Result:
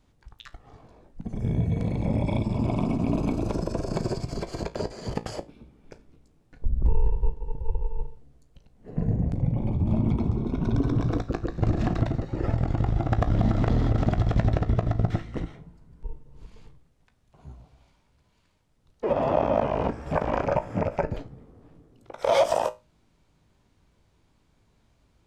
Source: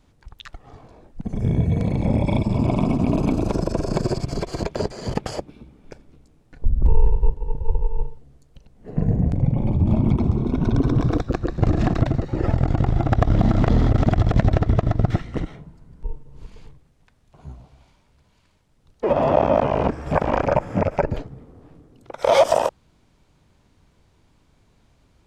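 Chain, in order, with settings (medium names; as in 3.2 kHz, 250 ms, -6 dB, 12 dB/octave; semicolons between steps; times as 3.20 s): feedback comb 56 Hz, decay 0.24 s, harmonics all, mix 60%; trim -2 dB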